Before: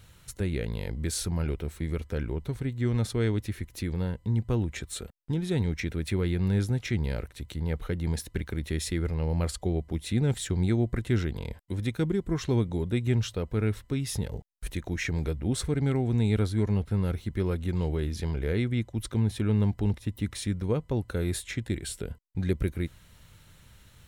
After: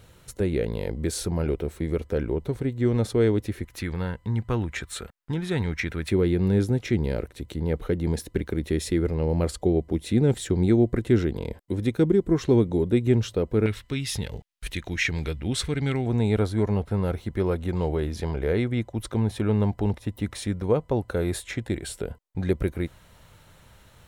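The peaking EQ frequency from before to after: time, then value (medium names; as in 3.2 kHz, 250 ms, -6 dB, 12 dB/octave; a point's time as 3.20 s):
peaking EQ +9.5 dB 2 oct
460 Hz
from 3.65 s 1.4 kHz
from 6.09 s 380 Hz
from 13.66 s 2.9 kHz
from 16.06 s 690 Hz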